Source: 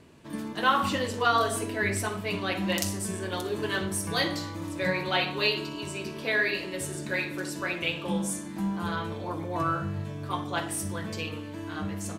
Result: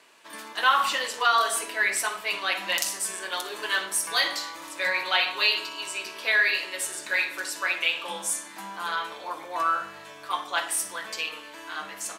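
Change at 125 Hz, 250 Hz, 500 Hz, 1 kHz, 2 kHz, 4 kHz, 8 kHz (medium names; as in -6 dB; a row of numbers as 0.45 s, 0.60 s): under -25 dB, -15.5 dB, -4.5 dB, +3.0 dB, +5.5 dB, +5.5 dB, +6.0 dB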